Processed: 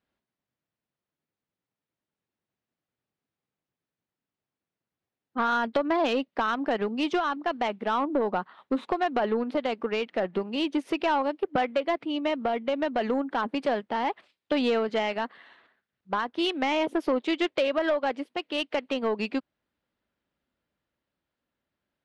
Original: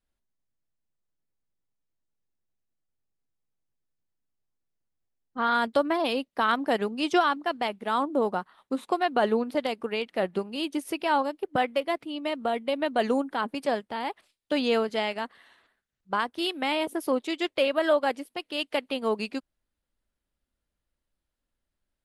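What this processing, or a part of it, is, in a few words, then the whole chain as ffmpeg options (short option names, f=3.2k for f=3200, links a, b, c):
AM radio: -af "highpass=120,lowpass=3.4k,acompressor=threshold=-26dB:ratio=5,asoftclip=type=tanh:threshold=-23dB,tremolo=f=0.35:d=0.19,volume=6.5dB"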